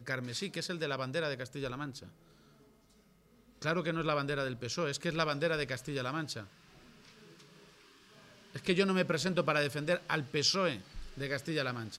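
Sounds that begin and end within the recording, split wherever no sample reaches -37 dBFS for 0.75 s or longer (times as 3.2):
3.62–6.41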